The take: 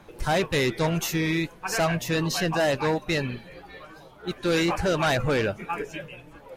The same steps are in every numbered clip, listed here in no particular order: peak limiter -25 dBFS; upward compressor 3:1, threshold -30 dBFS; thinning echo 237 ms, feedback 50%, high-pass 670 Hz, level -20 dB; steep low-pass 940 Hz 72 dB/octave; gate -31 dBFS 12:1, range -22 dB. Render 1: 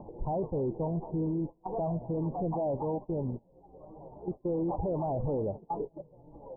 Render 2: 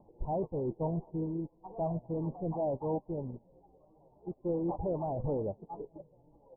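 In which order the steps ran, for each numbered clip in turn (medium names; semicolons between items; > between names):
thinning echo > gate > upward compressor > steep low-pass > peak limiter; thinning echo > peak limiter > upward compressor > gate > steep low-pass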